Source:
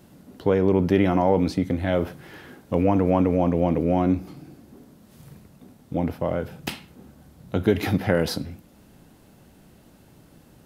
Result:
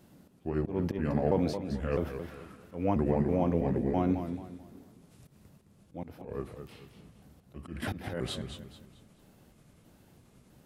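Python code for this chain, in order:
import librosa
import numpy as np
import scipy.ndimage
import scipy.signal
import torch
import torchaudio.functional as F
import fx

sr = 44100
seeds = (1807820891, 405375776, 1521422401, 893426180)

y = fx.pitch_trill(x, sr, semitones=-4.0, every_ms=328)
y = fx.auto_swell(y, sr, attack_ms=195.0)
y = fx.echo_warbled(y, sr, ms=217, feedback_pct=34, rate_hz=2.8, cents=105, wet_db=-9)
y = y * librosa.db_to_amplitude(-7.0)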